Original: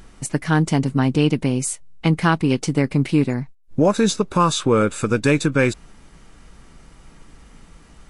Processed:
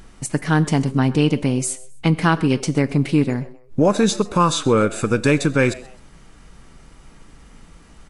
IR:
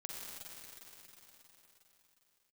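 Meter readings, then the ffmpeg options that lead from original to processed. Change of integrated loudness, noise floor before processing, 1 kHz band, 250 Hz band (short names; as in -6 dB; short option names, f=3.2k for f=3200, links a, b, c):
+0.5 dB, -48 dBFS, +0.5 dB, +0.5 dB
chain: -filter_complex "[0:a]asplit=3[a][b][c];[b]adelay=130,afreqshift=130,volume=-21.5dB[d];[c]adelay=260,afreqshift=260,volume=-31.4dB[e];[a][d][e]amix=inputs=3:normalize=0,asplit=2[f][g];[1:a]atrim=start_sample=2205,afade=t=out:st=0.21:d=0.01,atrim=end_sample=9702,asetrate=57330,aresample=44100[h];[g][h]afir=irnorm=-1:irlink=0,volume=-7dB[i];[f][i]amix=inputs=2:normalize=0,volume=-1dB"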